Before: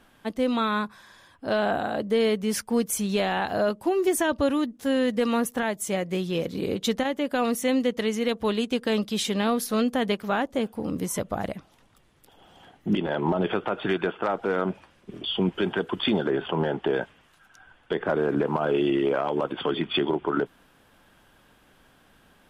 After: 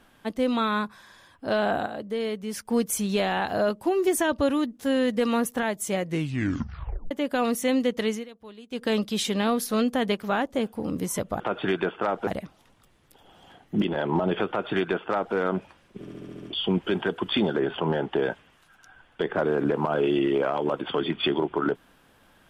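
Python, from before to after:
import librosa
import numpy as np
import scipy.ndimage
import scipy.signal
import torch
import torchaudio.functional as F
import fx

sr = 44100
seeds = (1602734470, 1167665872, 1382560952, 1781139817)

y = fx.edit(x, sr, fx.clip_gain(start_s=1.86, length_s=0.79, db=-6.5),
    fx.tape_stop(start_s=6.04, length_s=1.07),
    fx.fade_down_up(start_s=8.11, length_s=0.73, db=-19.5, fade_s=0.15),
    fx.duplicate(start_s=13.61, length_s=0.87, to_s=11.4),
    fx.stutter(start_s=15.13, slice_s=0.07, count=7), tone=tone)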